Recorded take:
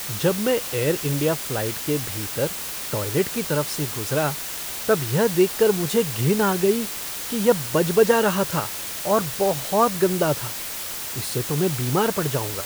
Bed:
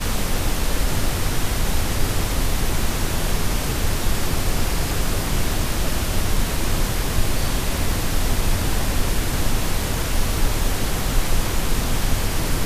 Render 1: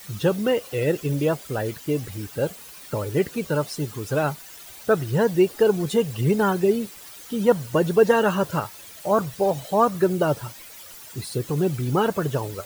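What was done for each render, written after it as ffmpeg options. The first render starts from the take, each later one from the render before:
-af "afftdn=nr=14:nf=-31"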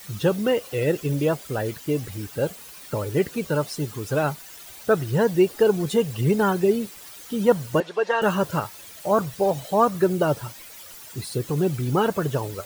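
-filter_complex "[0:a]asettb=1/sr,asplit=3[a][b][c];[a]atrim=end=7.804[d];[b]atrim=start=7.8:end=8.22,asetpts=PTS-STARTPTS,afade=t=in:d=0.004:c=qsin,afade=t=out:st=0.416:d=0.004:c=qsin,highpass=660,lowpass=4.2k[e];[c]atrim=start=8.216[f];[d][e]acrossfade=d=0.004:c1=hsin:c2=qsin[g];[g][f]acrossfade=d=0.004:c1=qsin:c2=hsin"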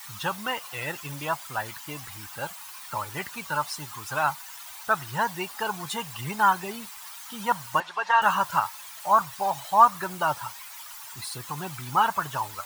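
-af "lowshelf=f=650:t=q:w=3:g=-12.5"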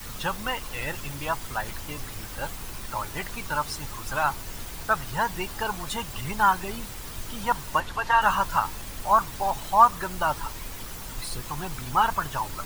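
-filter_complex "[1:a]volume=-18dB[a];[0:a][a]amix=inputs=2:normalize=0"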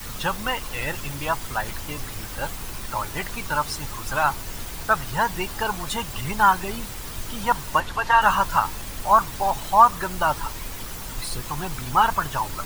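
-af "volume=3.5dB,alimiter=limit=-3dB:level=0:latency=1"

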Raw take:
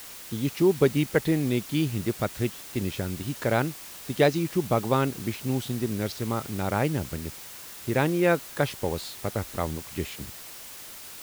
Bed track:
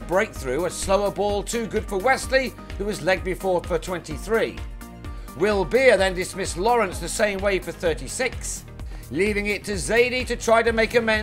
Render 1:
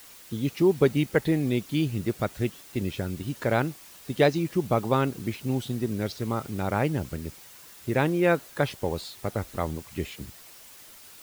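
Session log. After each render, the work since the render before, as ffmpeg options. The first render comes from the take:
-af "afftdn=nr=7:nf=-43"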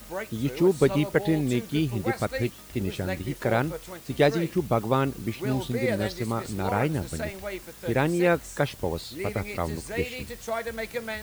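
-filter_complex "[1:a]volume=-13dB[a];[0:a][a]amix=inputs=2:normalize=0"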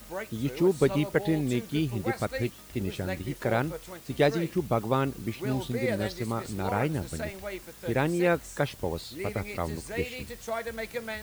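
-af "volume=-2.5dB"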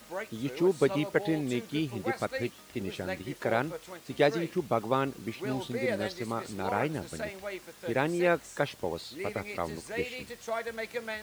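-af "highpass=f=270:p=1,highshelf=f=10k:g=-9.5"

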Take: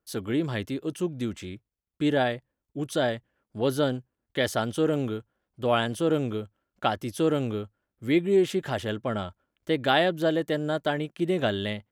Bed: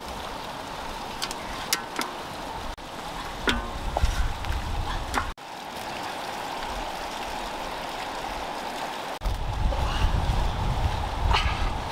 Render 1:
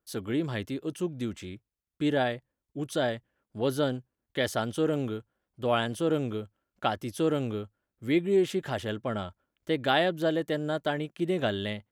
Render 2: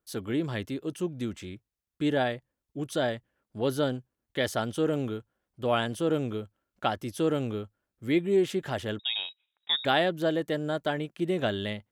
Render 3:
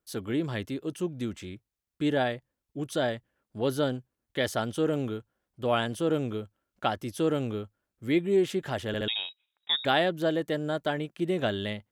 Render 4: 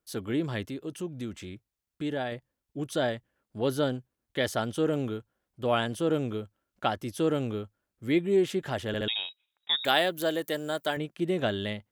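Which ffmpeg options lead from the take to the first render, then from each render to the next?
-af "volume=-2.5dB"
-filter_complex "[0:a]asettb=1/sr,asplit=3[a][b][c];[a]atrim=end=8.994[d];[b]atrim=start=8.99:end=9.85,asetpts=PTS-STARTPTS,afade=t=in:d=0.004:c=qsin,afade=t=out:st=0.856:d=0.004:c=qsin,lowpass=f=3.3k:t=q:w=0.5098,lowpass=f=3.3k:t=q:w=0.6013,lowpass=f=3.3k:t=q:w=0.9,lowpass=f=3.3k:t=q:w=2.563,afreqshift=-3900[e];[c]atrim=start=9.846[f];[d][e]acrossfade=d=0.004:c1=hsin:c2=qsin[g];[g][f]acrossfade=d=0.004:c1=qsin:c2=hsin"
-filter_complex "[0:a]asplit=4[a][b][c][d];[a]atrim=end=8.942[e];[b]atrim=start=8.868:end=8.942[f];[c]atrim=start=8.868:end=8.942[g];[d]atrim=start=9.078[h];[e][f]acrossfade=d=0.004:c1=hsin:c2=hsin[i];[i][g]acrossfade=d=0.004:c1=hsin:c2=hsin[j];[j][h]acrossfade=d=0.004:c1=hsin:c2=hsin"
-filter_complex "[0:a]asettb=1/sr,asplit=3[a][b][c];[a]atrim=end=0.634[d];[b]atrim=start=0.63:end=2.32,asetpts=PTS-STARTPTS,afade=t=in:d=0.004:c=qsin,afade=t=out:st=1.686:d=0.004:c=qsin,acompressor=threshold=-37dB:ratio=1.5:attack=3.2:release=140:knee=1:detection=peak[e];[c]atrim=start=2.316[f];[d][e]acrossfade=d=0.004:c1=hsin:c2=qsin[g];[g][f]acrossfade=d=0.004:c1=qsin:c2=hsin,asettb=1/sr,asplit=3[h][i][j];[h]atrim=end=9.814[k];[i]atrim=start=9.81:end=10.97,asetpts=PTS-STARTPTS,afade=t=in:d=0.004:c=qsin,afade=t=out:st=1.156:d=0.004:c=qsin,aemphasis=mode=production:type=bsi[l];[j]atrim=start=10.966[m];[k][l]acrossfade=d=0.004:c1=hsin:c2=qsin[n];[n][m]acrossfade=d=0.004:c1=qsin:c2=hsin"

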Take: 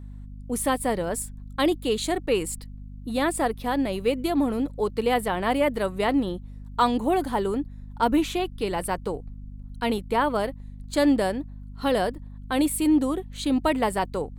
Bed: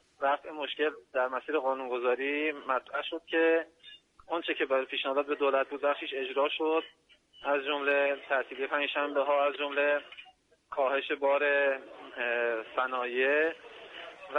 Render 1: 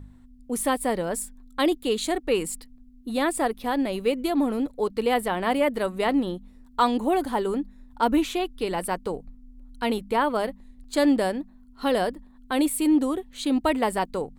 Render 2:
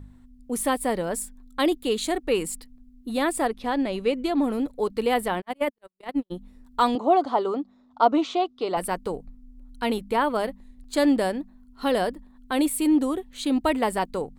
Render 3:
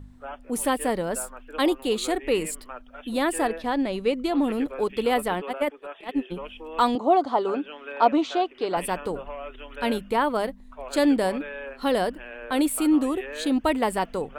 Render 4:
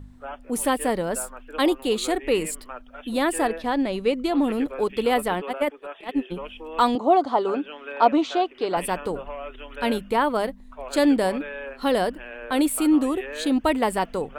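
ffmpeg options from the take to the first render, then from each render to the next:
-af "bandreject=f=50:t=h:w=4,bandreject=f=100:t=h:w=4,bandreject=f=150:t=h:w=4,bandreject=f=200:t=h:w=4"
-filter_complex "[0:a]asettb=1/sr,asplit=3[a][b][c];[a]atrim=end=3.474[d];[b]atrim=start=3.47:end=4.44,asetpts=PTS-STARTPTS,afade=t=in:d=0.004:c=qsin,afade=t=out:st=0.966:d=0.004:c=qsin,lowpass=7.3k[e];[c]atrim=start=4.436[f];[d][e]acrossfade=d=0.004:c1=hsin:c2=qsin[g];[g][f]acrossfade=d=0.004:c1=qsin:c2=hsin,asplit=3[h][i][j];[h]afade=t=out:st=5.4:d=0.02[k];[i]agate=range=-57dB:threshold=-21dB:ratio=16:release=100:detection=peak,afade=t=in:st=5.4:d=0.02,afade=t=out:st=6.3:d=0.02[l];[j]afade=t=in:st=6.3:d=0.02[m];[k][l][m]amix=inputs=3:normalize=0,asettb=1/sr,asplit=3[n][o][p];[n]atrim=end=6.954[q];[o]atrim=start=6.95:end=8.77,asetpts=PTS-STARTPTS,afade=t=in:d=0.004:c=qsin,afade=t=out:st=1.816:d=0.004:c=qsin,highpass=180,equalizer=f=210:t=q:w=4:g=-6,equalizer=f=680:t=q:w=4:g=9,equalizer=f=1.2k:t=q:w=4:g=8,equalizer=f=1.7k:t=q:w=4:g=-10,equalizer=f=2.5k:t=q:w=4:g=-5,lowpass=f=5.8k:w=0.5412,lowpass=f=5.8k:w=1.3066[r];[p]atrim=start=8.766[s];[q][r]acrossfade=d=0.004:c1=hsin:c2=qsin[t];[t][s]acrossfade=d=0.004:c1=qsin:c2=hsin"
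-filter_complex "[1:a]volume=-10dB[a];[0:a][a]amix=inputs=2:normalize=0"
-af "volume=1.5dB"

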